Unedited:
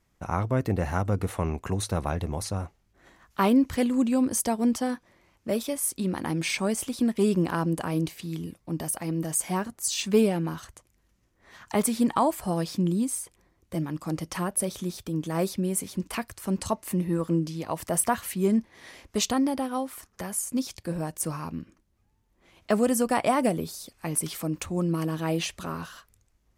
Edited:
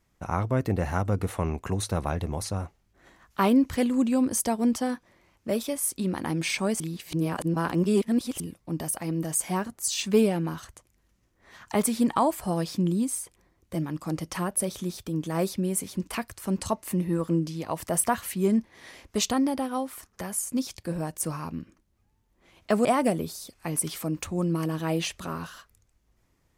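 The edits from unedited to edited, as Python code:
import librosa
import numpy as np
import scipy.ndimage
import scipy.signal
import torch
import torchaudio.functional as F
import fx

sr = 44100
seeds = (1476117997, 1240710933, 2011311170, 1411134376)

y = fx.edit(x, sr, fx.reverse_span(start_s=6.8, length_s=1.6),
    fx.cut(start_s=22.85, length_s=0.39), tone=tone)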